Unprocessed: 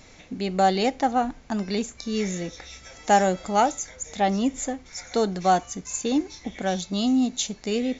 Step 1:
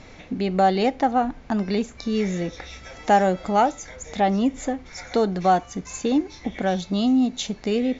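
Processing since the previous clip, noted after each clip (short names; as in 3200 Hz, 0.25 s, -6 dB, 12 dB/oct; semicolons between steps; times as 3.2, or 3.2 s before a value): LPF 5900 Hz 12 dB/oct; high shelf 3700 Hz -8.5 dB; in parallel at +1 dB: compressor, threshold -31 dBFS, peak gain reduction 16 dB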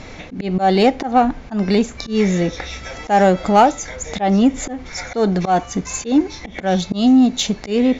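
auto swell 0.142 s; in parallel at -5 dB: soft clip -22 dBFS, distortion -10 dB; on the sum: gain +5.5 dB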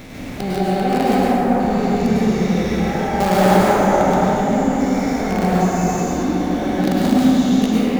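stepped spectrum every 0.4 s; in parallel at -8.5 dB: companded quantiser 2-bit; on the sum: plate-style reverb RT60 4.6 s, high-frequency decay 0.25×, pre-delay 90 ms, DRR -8 dB; gain -6.5 dB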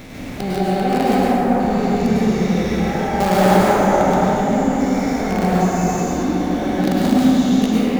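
nothing audible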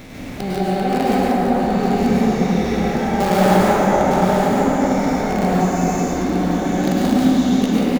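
echo 0.908 s -6.5 dB; gain -1 dB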